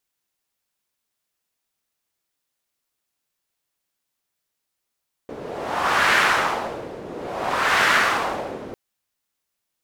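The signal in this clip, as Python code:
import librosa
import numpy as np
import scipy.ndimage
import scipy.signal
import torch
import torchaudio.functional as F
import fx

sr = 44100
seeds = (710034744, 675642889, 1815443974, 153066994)

y = fx.wind(sr, seeds[0], length_s=3.45, low_hz=400.0, high_hz=1600.0, q=1.7, gusts=2, swing_db=17.5)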